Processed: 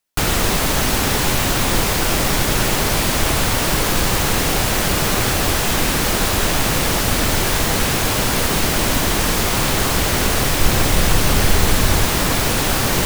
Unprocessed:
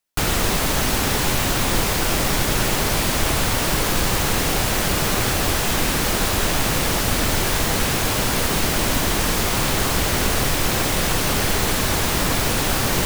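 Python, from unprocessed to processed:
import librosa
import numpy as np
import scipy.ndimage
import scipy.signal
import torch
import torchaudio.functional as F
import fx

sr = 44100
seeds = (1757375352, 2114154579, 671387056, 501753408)

y = fx.low_shelf(x, sr, hz=110.0, db=8.0, at=(10.61, 12.05))
y = F.gain(torch.from_numpy(y), 2.5).numpy()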